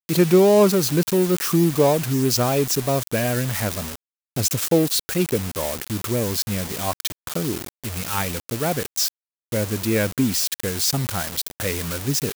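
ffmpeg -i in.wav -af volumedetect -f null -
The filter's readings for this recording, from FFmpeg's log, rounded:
mean_volume: -21.7 dB
max_volume: -5.1 dB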